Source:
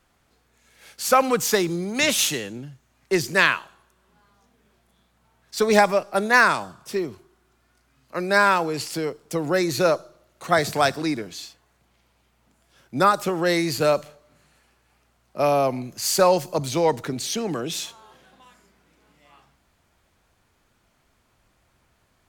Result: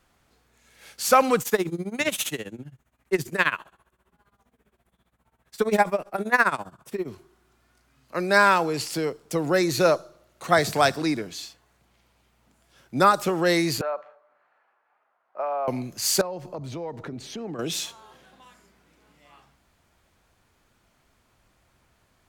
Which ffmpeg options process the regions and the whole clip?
ffmpeg -i in.wav -filter_complex "[0:a]asettb=1/sr,asplit=3[link_01][link_02][link_03];[link_01]atrim=end=1.414[link_04];[link_02]atrim=start=1.41:end=7.08,asetpts=PTS-STARTPTS,afade=type=in:duration=0.004:curve=qsin,afade=type=out:start_time=5.666:duration=0.004:curve=qsin,equalizer=frequency=5100:width_type=o:width=1:gain=-9.5,tremolo=f=15:d=0.89[link_05];[link_03]atrim=start=7.076[link_06];[link_04][link_05]acrossfade=duration=0.004:curve1=hsin:curve2=qsin[link_07];[link_07][link_06]acrossfade=duration=0.004:curve1=qsin:curve2=hsin,asettb=1/sr,asplit=3[link_08][link_09][link_10];[link_08]atrim=end=13.814[link_11];[link_09]atrim=start=13.81:end=15.68,asetpts=PTS-STARTPTS,afade=type=in:duration=0.004:curve=qsin,afade=type=out:start_time=1.866:duration=0.004:curve=qsin,acompressor=threshold=-21dB:ratio=6:attack=3.2:release=140:knee=1:detection=peak,asuperpass=centerf=1000:order=4:qfactor=0.93[link_12];[link_10]atrim=start=15.676[link_13];[link_11][link_12]acrossfade=duration=0.004:curve1=hsin:curve2=qsin[link_14];[link_14][link_13]acrossfade=duration=0.004:curve1=qsin:curve2=hsin,asettb=1/sr,asplit=3[link_15][link_16][link_17];[link_15]atrim=end=16.214[link_18];[link_16]atrim=start=16.21:end=17.59,asetpts=PTS-STARTPTS,afade=type=in:duration=0.004:curve=qsin,afade=type=out:start_time=1.376:duration=0.004:curve=qsin,lowpass=frequency=1100:poles=1,acompressor=threshold=-32dB:ratio=4:attack=3.2:release=140:knee=1:detection=peak[link_19];[link_17]atrim=start=17.586[link_20];[link_18][link_19]acrossfade=duration=0.004:curve1=hsin:curve2=qsin[link_21];[link_21][link_20]acrossfade=duration=0.004:curve1=qsin:curve2=hsin" out.wav

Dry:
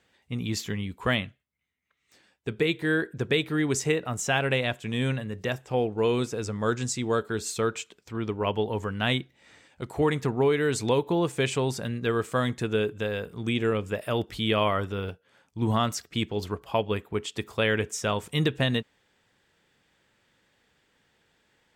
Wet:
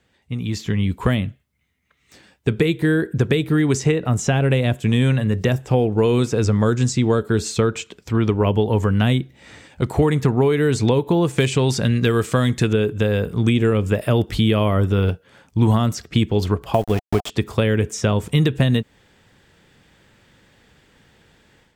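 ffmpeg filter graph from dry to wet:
ffmpeg -i in.wav -filter_complex "[0:a]asettb=1/sr,asplit=3[link_01][link_02][link_03];[link_01]atrim=end=11.384[link_04];[link_02]atrim=start=11.38:end=12.73,asetpts=PTS-STARTPTS,afade=type=in:duration=0.004:curve=qsin,afade=type=out:start_time=1.346:duration=0.004:curve=qsin,tiltshelf=frequency=1200:gain=-6,acontrast=72,volume=9.5dB,asoftclip=hard,volume=-9.5dB[link_05];[link_03]atrim=start=12.726[link_06];[link_04][link_05]acrossfade=duration=0.004:curve1=hsin:curve2=qsin[link_07];[link_07][link_06]acrossfade=duration=0.004:curve1=qsin:curve2=hsin,asettb=1/sr,asplit=3[link_08][link_09][link_10];[link_08]atrim=end=16.744[link_11];[link_09]atrim=start=16.74:end=17.3,asetpts=PTS-STARTPTS,afade=type=in:duration=0.004:curve=qsin,afade=type=out:start_time=0.556:duration=0.004:curve=qsin,aeval=exprs='val(0)*gte(abs(val(0)),0.0237)':channel_layout=same,equalizer=frequency=720:width=3.8:gain=12.5[link_12];[link_10]atrim=start=17.296[link_13];[link_11][link_12]acrossfade=duration=0.004:curve1=hsin:curve2=qsin[link_14];[link_14][link_13]acrossfade=duration=0.004:curve1=qsin:curve2=hsin,acrossover=split=560|7400[link_15][link_16][link_17];[link_15]acompressor=threshold=-31dB:ratio=4[link_18];[link_16]acompressor=threshold=-37dB:ratio=4[link_19];[link_17]acompressor=threshold=-55dB:ratio=4[link_20];[link_18][link_19][link_20]amix=inputs=3:normalize=0,lowshelf=frequency=260:gain=9,dynaudnorm=framelen=450:gausssize=3:maxgain=10dB,volume=1dB" out.wav

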